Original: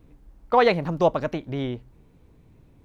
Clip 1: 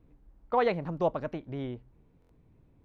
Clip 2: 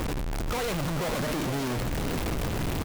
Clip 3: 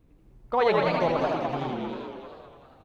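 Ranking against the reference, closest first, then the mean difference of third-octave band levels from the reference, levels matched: 1, 3, 2; 1.5, 8.0, 18.0 decibels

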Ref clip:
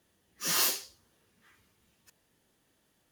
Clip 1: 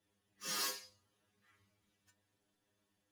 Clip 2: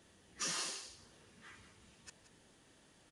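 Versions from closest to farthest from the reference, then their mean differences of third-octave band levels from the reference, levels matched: 1, 2; 3.0, 10.5 decibels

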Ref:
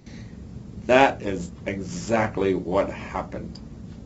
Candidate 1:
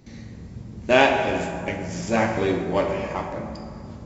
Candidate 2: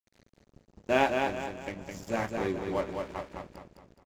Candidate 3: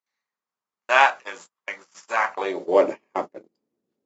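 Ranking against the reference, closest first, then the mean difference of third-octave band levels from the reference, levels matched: 1, 2, 3; 4.0, 7.0, 12.5 decibels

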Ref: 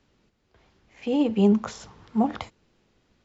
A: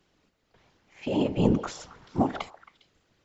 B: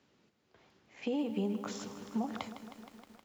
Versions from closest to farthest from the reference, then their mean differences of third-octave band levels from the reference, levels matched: A, B; 5.0, 8.5 decibels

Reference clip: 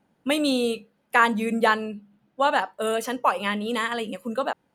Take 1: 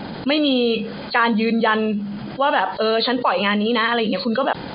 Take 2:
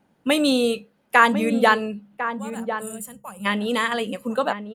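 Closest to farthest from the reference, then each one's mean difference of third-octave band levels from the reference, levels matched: 2, 1; 4.0, 7.5 decibels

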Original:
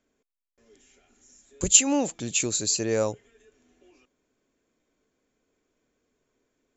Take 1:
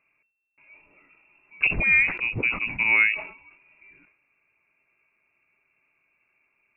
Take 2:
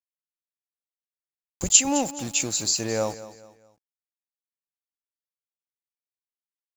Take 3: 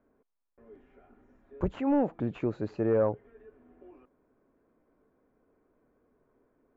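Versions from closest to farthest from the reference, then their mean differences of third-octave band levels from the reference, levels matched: 2, 3, 1; 5.5, 9.5, 16.0 decibels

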